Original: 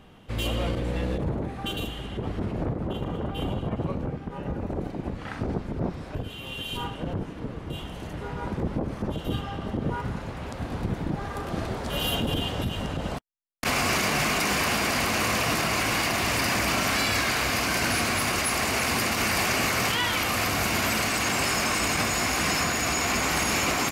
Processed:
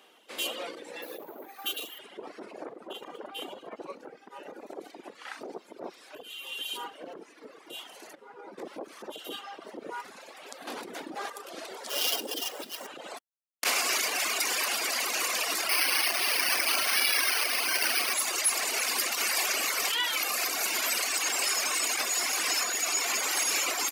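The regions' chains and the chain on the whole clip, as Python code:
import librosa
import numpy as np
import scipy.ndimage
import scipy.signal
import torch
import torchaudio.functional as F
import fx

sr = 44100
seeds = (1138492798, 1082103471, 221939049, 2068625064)

y = fx.chain(x, sr, fx.low_shelf(hz=96.0, db=-11.5),
    fx.resample_bad(factor=3, down='none', up='hold'), at=(1.02, 1.99))
y = fx.chain(y, sr, fx.high_shelf(hz=2000.0, db=-8.0),
    fx.ensemble(), at=(8.15, 8.58))
y = fx.chain(y, sr, fx.peak_eq(hz=250.0, db=5.5, octaves=0.31),
    fx.env_flatten(amount_pct=70), at=(10.67, 11.3))
y = fx.chain(y, sr, fx.highpass(hz=260.0, slope=12),
    fx.sample_hold(seeds[0], rate_hz=8300.0, jitter_pct=20),
    fx.low_shelf(hz=410.0, db=6.0), at=(11.89, 12.87))
y = fx.chain(y, sr, fx.high_shelf(hz=2200.0, db=8.5),
    fx.resample_bad(factor=6, down='filtered', up='hold'), at=(15.69, 18.14))
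y = fx.dereverb_blind(y, sr, rt60_s=2.0)
y = scipy.signal.sosfilt(scipy.signal.butter(4, 340.0, 'highpass', fs=sr, output='sos'), y)
y = fx.high_shelf(y, sr, hz=2700.0, db=10.5)
y = F.gain(torch.from_numpy(y), -5.0).numpy()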